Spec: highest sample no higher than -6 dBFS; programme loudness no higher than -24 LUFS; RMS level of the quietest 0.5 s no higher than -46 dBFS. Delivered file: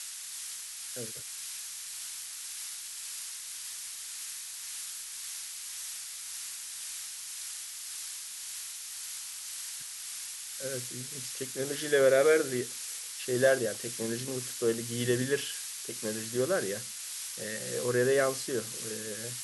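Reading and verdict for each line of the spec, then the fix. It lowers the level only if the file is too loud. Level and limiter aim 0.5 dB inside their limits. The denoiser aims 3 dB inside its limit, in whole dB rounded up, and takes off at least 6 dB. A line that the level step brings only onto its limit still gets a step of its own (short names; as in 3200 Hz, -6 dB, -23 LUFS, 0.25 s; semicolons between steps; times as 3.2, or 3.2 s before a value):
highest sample -13.0 dBFS: OK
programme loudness -33.0 LUFS: OK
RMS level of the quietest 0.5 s -41 dBFS: fail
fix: denoiser 8 dB, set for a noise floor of -41 dBFS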